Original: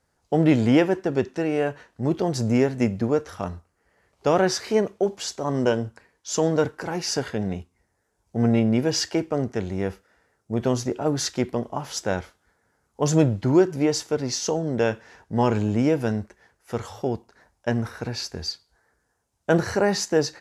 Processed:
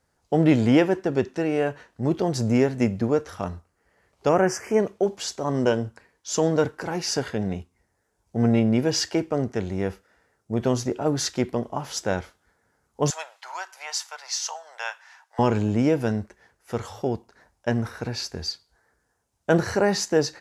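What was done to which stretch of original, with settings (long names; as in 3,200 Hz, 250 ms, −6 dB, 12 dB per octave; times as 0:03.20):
0:04.29–0:04.80: Butterworth band-reject 3,900 Hz, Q 1.2
0:13.10–0:15.39: Butterworth high-pass 790 Hz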